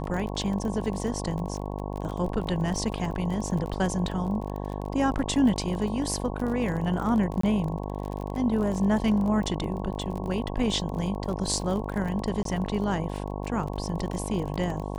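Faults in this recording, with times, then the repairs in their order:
buzz 50 Hz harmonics 22 -33 dBFS
crackle 32 per s -32 dBFS
7.41–7.43 s: dropout 24 ms
12.43–12.45 s: dropout 23 ms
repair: de-click; de-hum 50 Hz, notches 22; interpolate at 7.41 s, 24 ms; interpolate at 12.43 s, 23 ms

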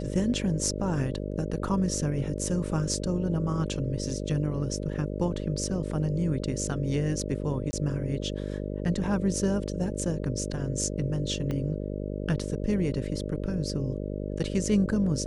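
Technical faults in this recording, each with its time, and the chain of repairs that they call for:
buzz 50 Hz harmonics 12 -33 dBFS
7.71–7.73 s: dropout 20 ms
11.51 s: pop -20 dBFS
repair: de-click; de-hum 50 Hz, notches 12; interpolate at 7.71 s, 20 ms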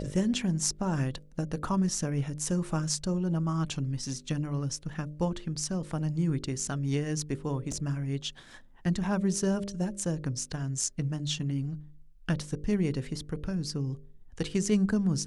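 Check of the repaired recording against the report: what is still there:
11.51 s: pop

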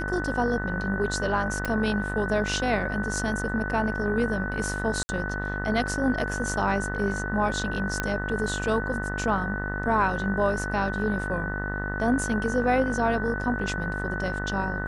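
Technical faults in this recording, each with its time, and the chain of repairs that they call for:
buzz 50 Hz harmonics 39 -32 dBFS
whine 1.5 kHz -32 dBFS
1.65 s: pop
5.03–5.09 s: dropout 60 ms
8.00 s: pop -11 dBFS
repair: de-click; band-stop 1.5 kHz, Q 30; de-hum 50 Hz, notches 39; interpolate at 5.03 s, 60 ms

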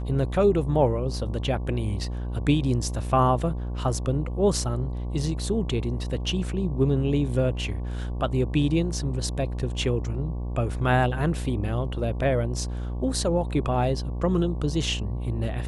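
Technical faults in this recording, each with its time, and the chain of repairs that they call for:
buzz 60 Hz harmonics 19 -30 dBFS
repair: de-hum 60 Hz, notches 19

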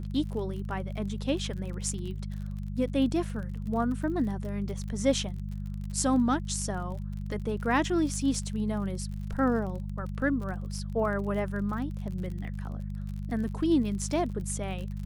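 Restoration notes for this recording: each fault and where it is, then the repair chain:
crackle 39 per s -37 dBFS
hum 50 Hz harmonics 4 -35 dBFS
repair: de-click; de-hum 50 Hz, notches 4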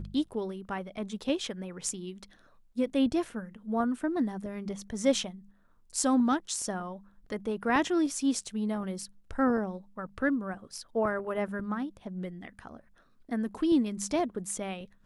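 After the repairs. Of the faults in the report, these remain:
nothing left

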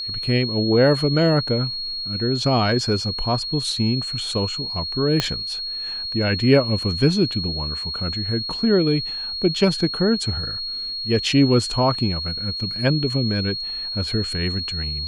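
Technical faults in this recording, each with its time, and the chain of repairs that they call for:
whine 4.3 kHz -26 dBFS
5.20 s: pop -5 dBFS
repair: de-click; band-stop 4.3 kHz, Q 30

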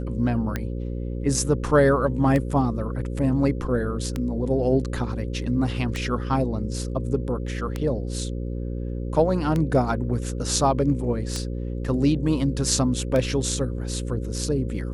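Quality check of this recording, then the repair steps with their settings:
buzz 60 Hz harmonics 9 -29 dBFS
tick 33 1/3 rpm -13 dBFS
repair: de-click; de-hum 60 Hz, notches 9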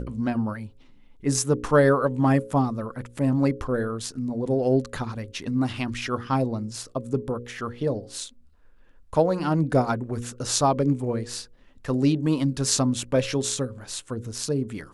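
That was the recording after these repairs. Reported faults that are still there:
nothing left

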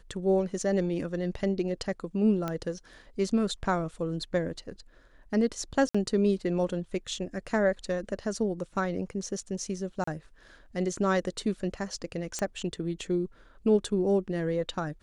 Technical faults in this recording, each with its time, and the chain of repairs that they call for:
2.48 s: pop -18 dBFS
5.89–5.95 s: dropout 55 ms
10.04–10.07 s: dropout 34 ms
12.39 s: pop -17 dBFS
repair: de-click; interpolate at 5.89 s, 55 ms; interpolate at 10.04 s, 34 ms

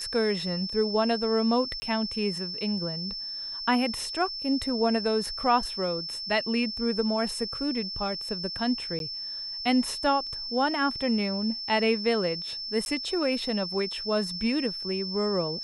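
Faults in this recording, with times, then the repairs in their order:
whine 5.3 kHz -33 dBFS
1.80–1.82 s: dropout 20 ms
8.99–9.00 s: dropout 12 ms
12.85–12.86 s: dropout 11 ms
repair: band-stop 5.3 kHz, Q 30; interpolate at 1.80 s, 20 ms; interpolate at 8.99 s, 12 ms; interpolate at 12.85 s, 11 ms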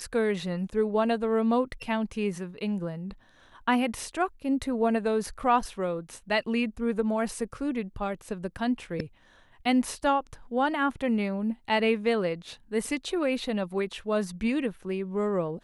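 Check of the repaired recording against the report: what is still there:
nothing left

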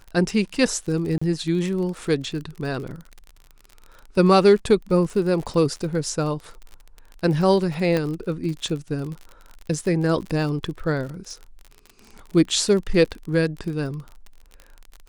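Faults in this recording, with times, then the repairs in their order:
crackle 42 per s -31 dBFS
1.18–1.22 s: dropout 35 ms
7.97 s: pop -11 dBFS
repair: de-click; interpolate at 1.18 s, 35 ms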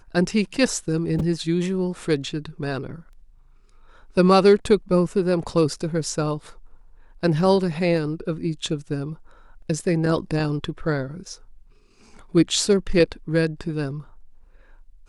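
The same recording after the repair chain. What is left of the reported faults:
7.97 s: pop

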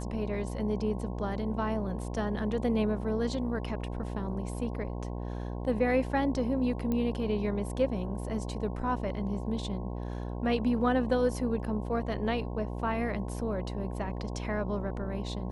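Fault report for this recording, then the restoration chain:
buzz 60 Hz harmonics 18 -36 dBFS
6.92 s: pop -20 dBFS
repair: de-click; de-hum 60 Hz, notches 18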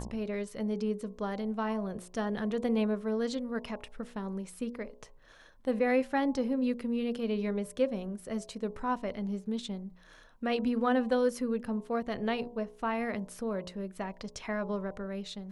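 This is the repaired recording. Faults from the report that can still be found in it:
nothing left

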